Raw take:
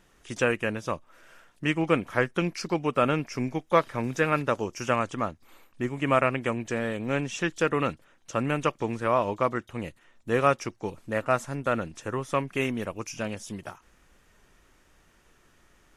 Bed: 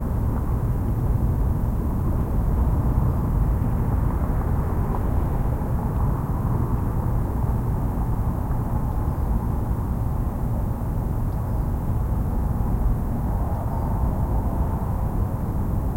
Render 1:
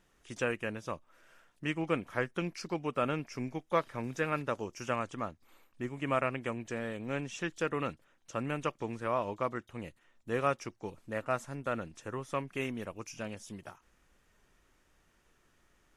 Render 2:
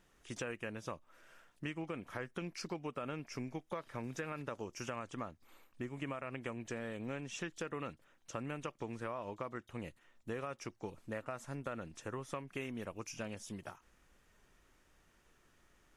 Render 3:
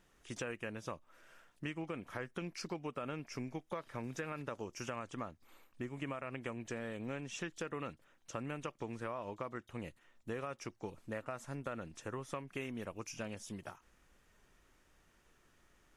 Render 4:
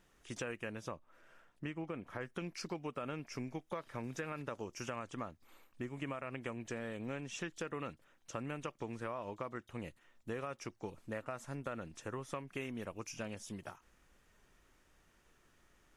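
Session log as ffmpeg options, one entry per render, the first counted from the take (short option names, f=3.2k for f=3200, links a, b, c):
-af "volume=-8dB"
-af "alimiter=limit=-22.5dB:level=0:latency=1:release=56,acompressor=threshold=-38dB:ratio=6"
-af anull
-filter_complex "[0:a]asettb=1/sr,asplit=3[a][b][c];[a]atrim=end=0.884[d];[b]atrim=start=0.88:end=2.21,asetpts=PTS-STARTPTS,afade=t=in:d=0.004:c=qsin,afade=t=out:st=1.326:d=0.004:c=qsin,highshelf=f=2.8k:g=-8.5[e];[c]atrim=start=2.206[f];[d][e]acrossfade=d=0.004:c1=hsin:c2=qsin[g];[g][f]acrossfade=d=0.004:c1=qsin:c2=hsin"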